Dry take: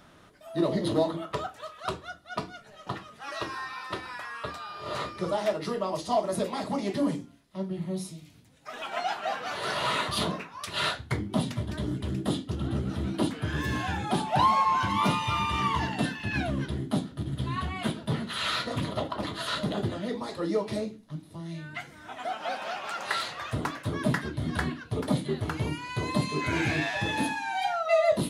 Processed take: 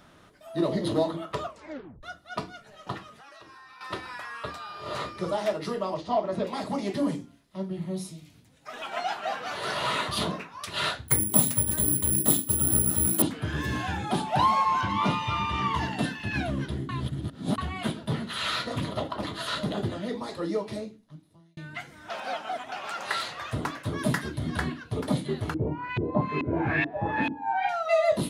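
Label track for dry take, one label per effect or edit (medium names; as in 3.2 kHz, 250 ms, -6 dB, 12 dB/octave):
1.410000	1.410000	tape stop 0.62 s
3.120000	3.810000	compression, threshold -47 dBFS
5.940000	6.470000	low-pass 3.2 kHz
11.080000	13.220000	careless resampling rate divided by 4×, down none, up zero stuff
14.810000	15.740000	distance through air 74 m
16.890000	17.580000	reverse
20.370000	21.570000	fade out
22.100000	22.720000	reverse
23.980000	24.390000	treble shelf 6.3 kHz +9 dB
25.540000	27.690000	LFO low-pass saw up 2.3 Hz 300–2700 Hz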